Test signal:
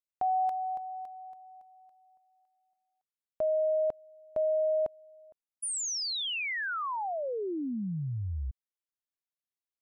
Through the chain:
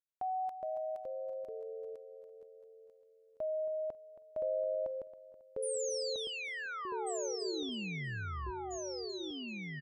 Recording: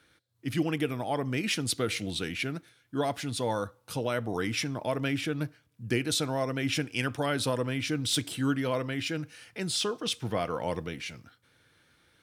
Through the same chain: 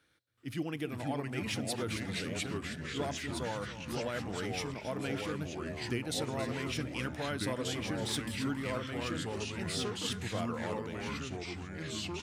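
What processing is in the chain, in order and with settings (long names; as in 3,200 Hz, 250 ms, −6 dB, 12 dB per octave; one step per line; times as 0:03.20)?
repeating echo 273 ms, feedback 35%, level −14 dB
delay with pitch and tempo change per echo 376 ms, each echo −3 semitones, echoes 3
level −8 dB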